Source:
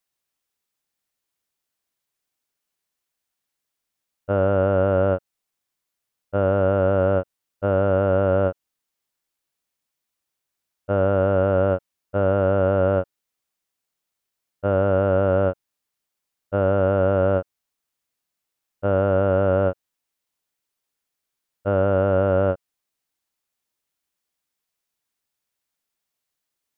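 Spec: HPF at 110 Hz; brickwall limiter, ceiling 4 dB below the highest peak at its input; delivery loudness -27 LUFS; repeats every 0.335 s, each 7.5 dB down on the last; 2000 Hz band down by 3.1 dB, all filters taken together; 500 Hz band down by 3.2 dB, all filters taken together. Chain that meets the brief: HPF 110 Hz; bell 500 Hz -3.5 dB; bell 2000 Hz -5 dB; limiter -14 dBFS; feedback echo 0.335 s, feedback 42%, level -7.5 dB; gain +0.5 dB

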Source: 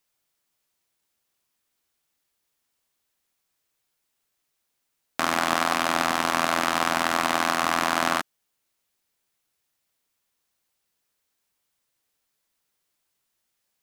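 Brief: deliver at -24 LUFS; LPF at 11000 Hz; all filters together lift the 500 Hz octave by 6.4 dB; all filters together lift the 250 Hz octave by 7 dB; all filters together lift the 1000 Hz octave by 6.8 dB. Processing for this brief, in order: LPF 11000 Hz; bell 250 Hz +6.5 dB; bell 500 Hz +4.5 dB; bell 1000 Hz +7 dB; gain -5.5 dB

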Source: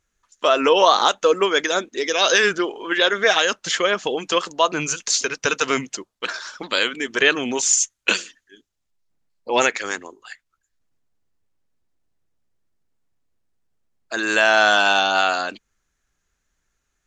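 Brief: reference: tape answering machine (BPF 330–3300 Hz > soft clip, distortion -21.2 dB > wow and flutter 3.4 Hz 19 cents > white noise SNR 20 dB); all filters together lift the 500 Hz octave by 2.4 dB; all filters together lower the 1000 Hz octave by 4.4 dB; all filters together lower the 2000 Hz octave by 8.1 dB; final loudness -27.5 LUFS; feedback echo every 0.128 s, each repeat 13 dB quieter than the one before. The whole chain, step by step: BPF 330–3300 Hz; bell 500 Hz +6 dB; bell 1000 Hz -6 dB; bell 2000 Hz -9 dB; feedback echo 0.128 s, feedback 22%, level -13 dB; soft clip -7 dBFS; wow and flutter 3.4 Hz 19 cents; white noise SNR 20 dB; gain -5.5 dB

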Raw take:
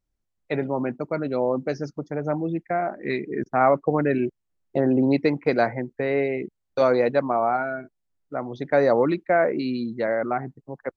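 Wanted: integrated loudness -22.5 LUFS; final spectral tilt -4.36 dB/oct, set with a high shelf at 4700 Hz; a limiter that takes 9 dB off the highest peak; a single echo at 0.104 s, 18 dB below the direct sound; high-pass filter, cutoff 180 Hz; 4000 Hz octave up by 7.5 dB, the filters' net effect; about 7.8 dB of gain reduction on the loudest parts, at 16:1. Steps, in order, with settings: HPF 180 Hz; bell 4000 Hz +6 dB; high shelf 4700 Hz +4.5 dB; compressor 16:1, threshold -22 dBFS; limiter -21 dBFS; echo 0.104 s -18 dB; gain +9 dB

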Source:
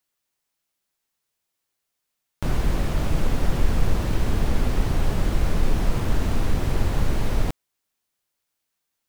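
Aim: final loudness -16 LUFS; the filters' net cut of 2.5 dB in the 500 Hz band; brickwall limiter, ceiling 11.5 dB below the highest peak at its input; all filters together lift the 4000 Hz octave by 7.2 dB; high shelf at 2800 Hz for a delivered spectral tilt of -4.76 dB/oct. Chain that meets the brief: bell 500 Hz -3.5 dB; high shelf 2800 Hz +4.5 dB; bell 4000 Hz +5.5 dB; gain +14 dB; limiter -3.5 dBFS

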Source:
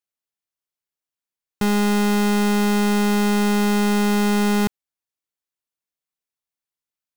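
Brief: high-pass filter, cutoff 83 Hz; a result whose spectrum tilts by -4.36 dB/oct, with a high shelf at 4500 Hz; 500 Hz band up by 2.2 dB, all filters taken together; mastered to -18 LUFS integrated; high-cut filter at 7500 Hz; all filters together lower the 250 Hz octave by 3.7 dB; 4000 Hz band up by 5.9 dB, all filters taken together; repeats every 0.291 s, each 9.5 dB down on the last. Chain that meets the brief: HPF 83 Hz; LPF 7500 Hz; bell 250 Hz -5.5 dB; bell 500 Hz +5 dB; bell 4000 Hz +4.5 dB; high shelf 4500 Hz +6 dB; feedback echo 0.291 s, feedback 33%, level -9.5 dB; gain +0.5 dB

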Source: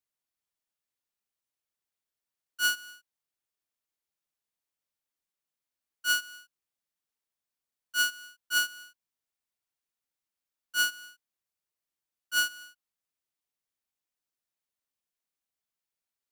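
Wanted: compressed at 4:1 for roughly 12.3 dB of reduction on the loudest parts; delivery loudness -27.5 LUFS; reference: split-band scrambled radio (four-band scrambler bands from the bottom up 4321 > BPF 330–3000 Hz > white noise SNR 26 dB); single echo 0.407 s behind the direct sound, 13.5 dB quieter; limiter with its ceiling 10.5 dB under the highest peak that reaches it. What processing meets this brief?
compressor 4:1, threshold -37 dBFS; limiter -40 dBFS; echo 0.407 s -13.5 dB; four-band scrambler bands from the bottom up 4321; BPF 330–3000 Hz; white noise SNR 26 dB; gain +26.5 dB

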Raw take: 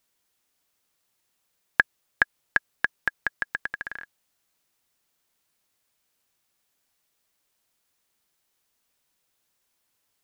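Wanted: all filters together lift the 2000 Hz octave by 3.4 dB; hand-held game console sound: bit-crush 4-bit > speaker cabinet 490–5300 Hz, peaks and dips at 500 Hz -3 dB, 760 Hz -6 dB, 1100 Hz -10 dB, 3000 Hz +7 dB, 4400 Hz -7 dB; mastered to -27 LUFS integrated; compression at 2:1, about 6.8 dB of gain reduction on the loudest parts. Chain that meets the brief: bell 2000 Hz +5.5 dB; compressor 2:1, threshold -25 dBFS; bit-crush 4-bit; speaker cabinet 490–5300 Hz, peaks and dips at 500 Hz -3 dB, 760 Hz -6 dB, 1100 Hz -10 dB, 3000 Hz +7 dB, 4400 Hz -7 dB; gain +4 dB

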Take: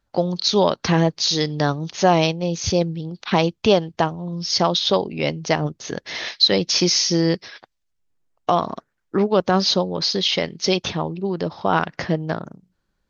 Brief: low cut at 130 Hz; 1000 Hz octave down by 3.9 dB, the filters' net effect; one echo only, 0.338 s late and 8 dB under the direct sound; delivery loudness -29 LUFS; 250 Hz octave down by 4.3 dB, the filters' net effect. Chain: HPF 130 Hz; bell 250 Hz -6 dB; bell 1000 Hz -5 dB; echo 0.338 s -8 dB; gain -7 dB

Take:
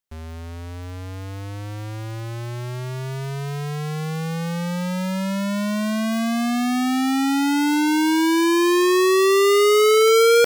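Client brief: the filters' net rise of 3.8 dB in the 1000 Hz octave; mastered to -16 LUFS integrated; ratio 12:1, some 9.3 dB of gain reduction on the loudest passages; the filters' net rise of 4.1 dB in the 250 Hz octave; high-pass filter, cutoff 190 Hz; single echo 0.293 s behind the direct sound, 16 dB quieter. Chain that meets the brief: HPF 190 Hz; bell 250 Hz +6.5 dB; bell 1000 Hz +4.5 dB; compressor 12:1, threshold -20 dBFS; echo 0.293 s -16 dB; gain +9 dB

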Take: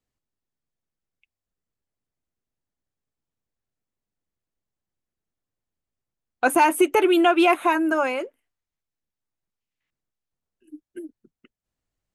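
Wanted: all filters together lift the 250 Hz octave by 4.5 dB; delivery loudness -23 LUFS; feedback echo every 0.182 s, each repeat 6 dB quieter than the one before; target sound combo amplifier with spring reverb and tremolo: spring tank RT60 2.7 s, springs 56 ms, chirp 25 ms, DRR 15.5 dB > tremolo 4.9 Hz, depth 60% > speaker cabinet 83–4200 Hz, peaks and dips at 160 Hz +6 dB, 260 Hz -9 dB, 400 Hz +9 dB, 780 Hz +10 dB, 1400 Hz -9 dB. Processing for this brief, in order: bell 250 Hz +4 dB; feedback echo 0.182 s, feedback 50%, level -6 dB; spring tank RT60 2.7 s, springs 56 ms, chirp 25 ms, DRR 15.5 dB; tremolo 4.9 Hz, depth 60%; speaker cabinet 83–4200 Hz, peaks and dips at 160 Hz +6 dB, 260 Hz -9 dB, 400 Hz +9 dB, 780 Hz +10 dB, 1400 Hz -9 dB; gain -5 dB

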